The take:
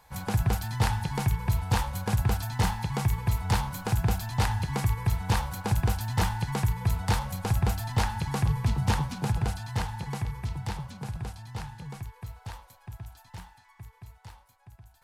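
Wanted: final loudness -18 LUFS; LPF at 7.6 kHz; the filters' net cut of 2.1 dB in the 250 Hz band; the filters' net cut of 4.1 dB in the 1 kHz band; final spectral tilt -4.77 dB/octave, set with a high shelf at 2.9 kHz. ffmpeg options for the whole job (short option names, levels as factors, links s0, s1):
-af "lowpass=7600,equalizer=f=250:t=o:g=-3.5,equalizer=f=1000:t=o:g=-5.5,highshelf=f=2900:g=6,volume=3.76"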